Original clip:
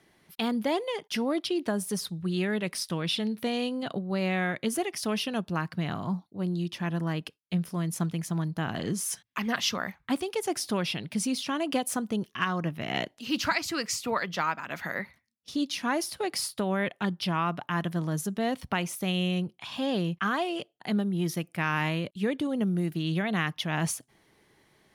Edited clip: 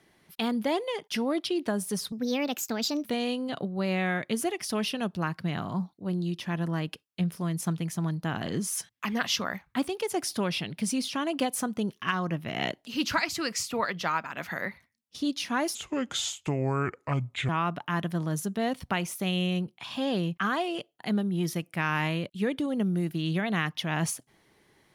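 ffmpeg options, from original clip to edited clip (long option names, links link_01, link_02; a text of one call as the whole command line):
ffmpeg -i in.wav -filter_complex "[0:a]asplit=5[link_01][link_02][link_03][link_04][link_05];[link_01]atrim=end=2.124[link_06];[link_02]atrim=start=2.12:end=3.38,asetpts=PTS-STARTPTS,asetrate=59976,aresample=44100,atrim=end_sample=40857,asetpts=PTS-STARTPTS[link_07];[link_03]atrim=start=3.376:end=16.084[link_08];[link_04]atrim=start=16.08:end=17.3,asetpts=PTS-STARTPTS,asetrate=30870,aresample=44100[link_09];[link_05]atrim=start=17.296[link_10];[link_06][link_07]acrossfade=duration=0.004:curve1=hsin:curve2=hsin[link_11];[link_11][link_08]acrossfade=duration=0.004:curve1=hsin:curve2=hsin[link_12];[link_12][link_09]acrossfade=duration=0.004:curve1=hsin:curve2=hsin[link_13];[link_13][link_10]acrossfade=duration=0.004:curve1=hsin:curve2=hsin" out.wav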